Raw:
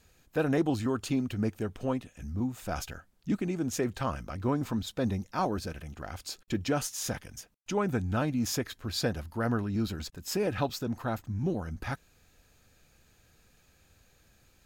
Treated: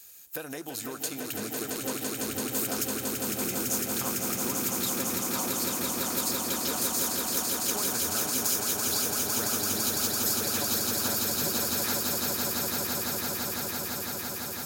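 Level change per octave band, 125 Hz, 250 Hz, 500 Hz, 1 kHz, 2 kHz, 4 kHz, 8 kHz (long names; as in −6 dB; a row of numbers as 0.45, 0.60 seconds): −7.5, −3.0, −1.5, +1.5, +5.0, +10.0, +15.0 decibels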